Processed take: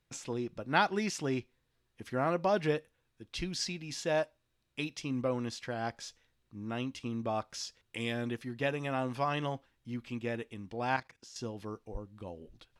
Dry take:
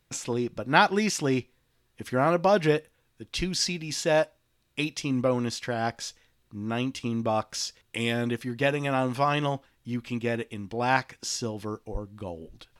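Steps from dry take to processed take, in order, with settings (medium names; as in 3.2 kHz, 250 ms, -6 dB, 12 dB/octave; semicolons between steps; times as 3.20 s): treble shelf 11 kHz -9 dB; 10.96–11.36 s: level held to a coarse grid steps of 15 dB; trim -7.5 dB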